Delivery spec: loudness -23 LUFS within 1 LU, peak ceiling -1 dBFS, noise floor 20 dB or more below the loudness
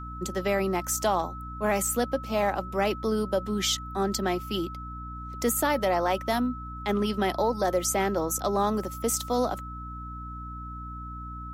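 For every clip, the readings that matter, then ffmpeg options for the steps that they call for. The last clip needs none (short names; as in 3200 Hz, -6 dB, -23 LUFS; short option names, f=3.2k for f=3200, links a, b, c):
hum 60 Hz; harmonics up to 300 Hz; hum level -38 dBFS; steady tone 1300 Hz; tone level -39 dBFS; loudness -27.5 LUFS; peak -13.5 dBFS; loudness target -23.0 LUFS
-> -af "bandreject=f=60:t=h:w=4,bandreject=f=120:t=h:w=4,bandreject=f=180:t=h:w=4,bandreject=f=240:t=h:w=4,bandreject=f=300:t=h:w=4"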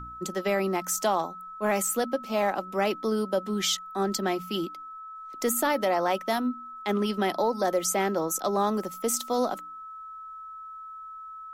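hum none; steady tone 1300 Hz; tone level -39 dBFS
-> -af "bandreject=f=1.3k:w=30"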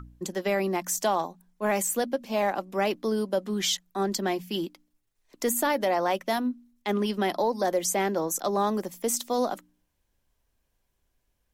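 steady tone none; loudness -28.0 LUFS; peak -13.5 dBFS; loudness target -23.0 LUFS
-> -af "volume=5dB"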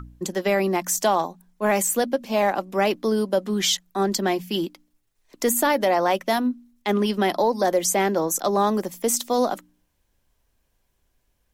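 loudness -23.0 LUFS; peak -8.5 dBFS; noise floor -71 dBFS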